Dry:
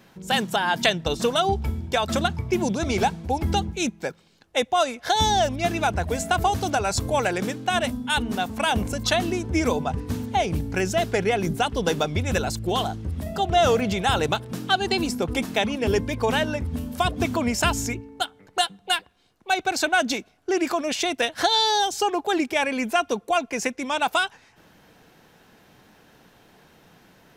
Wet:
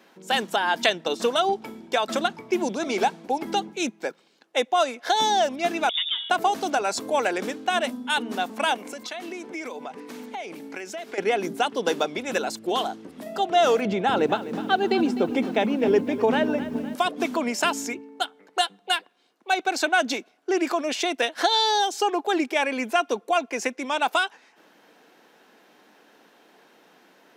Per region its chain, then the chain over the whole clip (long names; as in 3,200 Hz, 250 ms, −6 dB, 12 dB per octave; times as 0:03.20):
0:05.89–0:06.30: high-frequency loss of the air 480 metres + voice inversion scrambler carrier 3,600 Hz
0:08.74–0:11.18: high-pass filter 300 Hz 6 dB per octave + downward compressor 10 to 1, threshold −30 dBFS + parametric band 2,200 Hz +6 dB 0.32 octaves
0:13.85–0:16.95: RIAA equalisation playback + notch filter 1,100 Hz, Q 24 + feedback echo at a low word length 254 ms, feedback 55%, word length 7 bits, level −13.5 dB
whole clip: high-pass filter 250 Hz 24 dB per octave; high-shelf EQ 6,200 Hz −5.5 dB